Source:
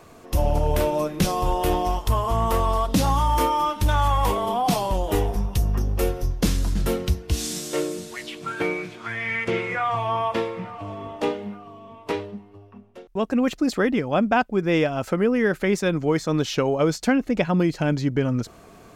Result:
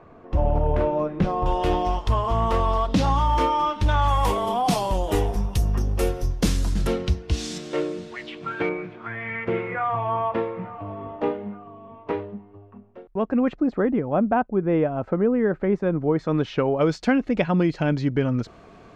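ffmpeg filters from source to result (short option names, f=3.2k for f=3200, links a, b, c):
-af "asetnsamples=n=441:p=0,asendcmd='1.46 lowpass f 4400;4.08 lowpass f 11000;6.87 lowpass f 5100;7.58 lowpass f 3100;8.69 lowpass f 1700;13.56 lowpass f 1100;16.19 lowpass f 2200;16.81 lowpass f 4000',lowpass=1.6k"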